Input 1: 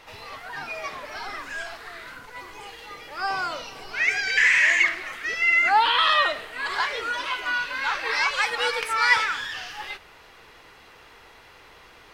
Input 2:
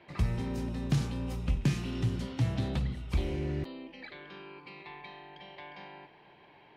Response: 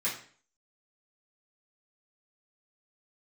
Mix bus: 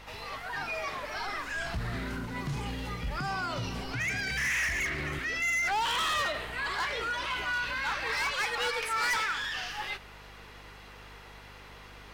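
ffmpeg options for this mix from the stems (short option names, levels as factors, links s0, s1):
-filter_complex "[0:a]aeval=exprs='val(0)+0.00251*(sin(2*PI*50*n/s)+sin(2*PI*2*50*n/s)/2+sin(2*PI*3*50*n/s)/3+sin(2*PI*4*50*n/s)/4+sin(2*PI*5*50*n/s)/5)':c=same,asoftclip=type=hard:threshold=0.0841,volume=0.944[s0];[1:a]aeval=exprs='val(0)+0.00708*(sin(2*PI*60*n/s)+sin(2*PI*2*60*n/s)/2+sin(2*PI*3*60*n/s)/3+sin(2*PI*4*60*n/s)/4+sin(2*PI*5*60*n/s)/5)':c=same,adelay=1550,volume=0.708[s1];[s0][s1]amix=inputs=2:normalize=0,alimiter=level_in=1.26:limit=0.0631:level=0:latency=1:release=11,volume=0.794"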